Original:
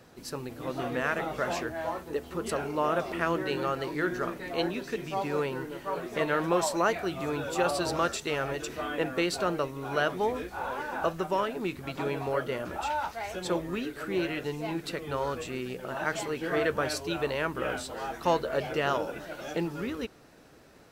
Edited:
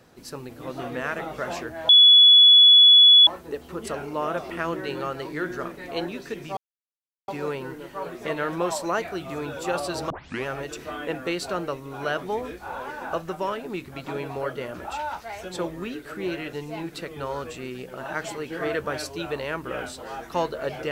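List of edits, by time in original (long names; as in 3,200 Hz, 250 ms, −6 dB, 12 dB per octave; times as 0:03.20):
0:01.89: insert tone 3,400 Hz −9 dBFS 1.38 s
0:05.19: splice in silence 0.71 s
0:08.01: tape start 0.36 s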